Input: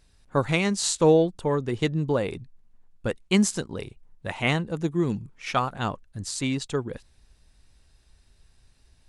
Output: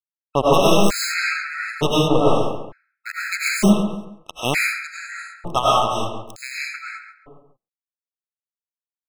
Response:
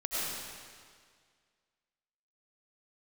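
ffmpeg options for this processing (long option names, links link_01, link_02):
-filter_complex "[0:a]aeval=exprs='val(0)+0.5*0.0531*sgn(val(0))':channel_layout=same,asettb=1/sr,asplit=3[link_01][link_02][link_03];[link_01]atrim=end=2.304[link_04];[link_02]atrim=start=2.3:end=3.37,asetpts=PTS-STARTPTS,afade=type=in:duration=0.004:curve=qsin,afade=type=out:start_time=1.066:duration=0.004:curve=qsin,equalizer=frequency=250:width_type=o:width=0.67:gain=9,equalizer=frequency=4000:width_type=o:width=0.67:gain=-11,equalizer=frequency=10000:width_type=o:width=0.67:gain=-6[link_05];[link_03]atrim=start=3.366[link_06];[link_04][link_05]acrossfade=duration=0.004:curve1=hsin:curve2=qsin[link_07];[link_07][link_06]acrossfade=duration=0.004:curve1=qsin:curve2=hsin,acrusher=bits=2:mix=0:aa=0.5,asplit=2[link_08][link_09];[link_09]adelay=137,lowpass=frequency=1700:poles=1,volume=-5.5dB,asplit=2[link_10][link_11];[link_11]adelay=137,lowpass=frequency=1700:poles=1,volume=0.36,asplit=2[link_12][link_13];[link_13]adelay=137,lowpass=frequency=1700:poles=1,volume=0.36,asplit=2[link_14][link_15];[link_15]adelay=137,lowpass=frequency=1700:poles=1,volume=0.36[link_16];[link_08][link_10][link_12][link_14][link_16]amix=inputs=5:normalize=0[link_17];[1:a]atrim=start_sample=2205,afade=type=out:start_time=0.27:duration=0.01,atrim=end_sample=12348[link_18];[link_17][link_18]afir=irnorm=-1:irlink=0,afftfilt=real='re*gt(sin(2*PI*0.55*pts/sr)*(1-2*mod(floor(b*sr/1024/1300),2)),0)':imag='im*gt(sin(2*PI*0.55*pts/sr)*(1-2*mod(floor(b*sr/1024/1300),2)),0)':win_size=1024:overlap=0.75,volume=4.5dB"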